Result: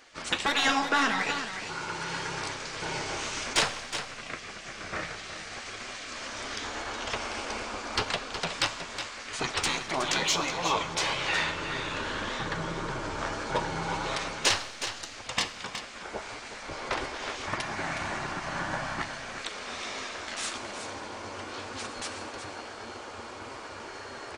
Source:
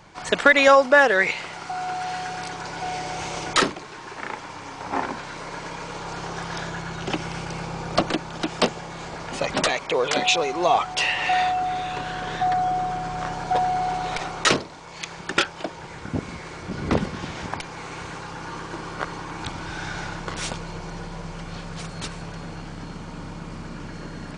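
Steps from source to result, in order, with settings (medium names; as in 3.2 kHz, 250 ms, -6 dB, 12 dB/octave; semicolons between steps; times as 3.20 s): in parallel at -4 dB: saturation -16 dBFS, distortion -9 dB; 17.47–19.02 s: on the sum: small resonant body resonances 470/1600 Hz, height 16 dB, ringing for 20 ms; spectral gate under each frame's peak -10 dB weak; flange 1.7 Hz, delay 7.3 ms, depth 5.8 ms, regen +56%; on a send: delay 367 ms -9.5 dB; on the sum: Schroeder reverb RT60 1.2 s, combs from 29 ms, DRR 13.5 dB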